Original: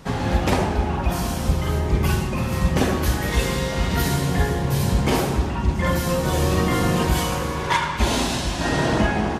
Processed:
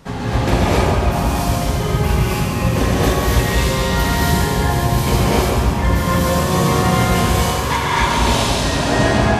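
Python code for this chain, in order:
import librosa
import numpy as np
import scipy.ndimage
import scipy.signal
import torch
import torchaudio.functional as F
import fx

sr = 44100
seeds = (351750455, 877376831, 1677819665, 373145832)

y = fx.echo_feedback(x, sr, ms=139, feedback_pct=60, wet_db=-7.0)
y = fx.rev_gated(y, sr, seeds[0], gate_ms=300, shape='rising', drr_db=-5.0)
y = y * 10.0 ** (-1.5 / 20.0)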